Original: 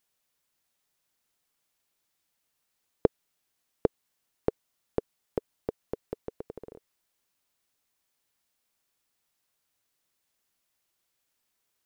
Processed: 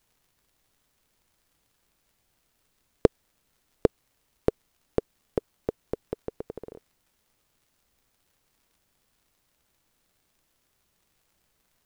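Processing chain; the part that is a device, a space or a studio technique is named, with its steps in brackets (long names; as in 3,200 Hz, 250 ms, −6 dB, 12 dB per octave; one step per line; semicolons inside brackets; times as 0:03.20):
record under a worn stylus (stylus tracing distortion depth 0.11 ms; surface crackle; pink noise bed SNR 39 dB)
level +3.5 dB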